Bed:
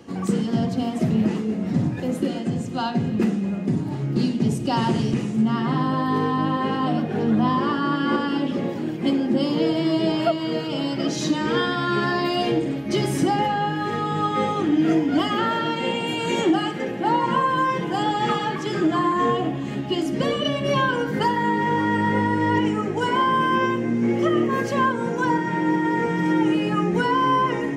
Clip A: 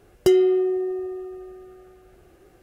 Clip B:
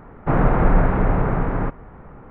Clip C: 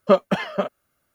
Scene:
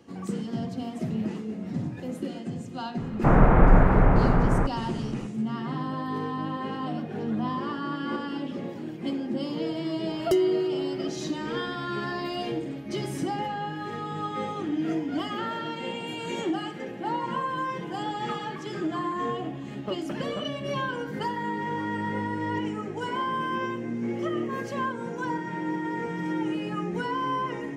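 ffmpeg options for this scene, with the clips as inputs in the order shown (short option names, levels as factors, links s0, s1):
-filter_complex "[0:a]volume=0.355[s0];[3:a]acompressor=threshold=0.178:ratio=6:attack=3.2:release=140:knee=1:detection=peak[s1];[2:a]atrim=end=2.3,asetpts=PTS-STARTPTS,volume=0.944,afade=t=in:d=0.004:c=hsin,afade=t=out:st=2.296:d=0.004:c=hsin,adelay=2970[s2];[1:a]atrim=end=2.62,asetpts=PTS-STARTPTS,volume=0.501,afade=t=in:d=0.004:c=hsin,afade=t=out:st=2.616:d=0.004:c=hsin,adelay=10050[s3];[s1]atrim=end=1.14,asetpts=PTS-STARTPTS,volume=0.211,afade=t=in:d=0.004:c=hsin,afade=t=out:st=1.136:d=0.004:c=hsin,adelay=19780[s4];[s0][s2][s3][s4]amix=inputs=4:normalize=0"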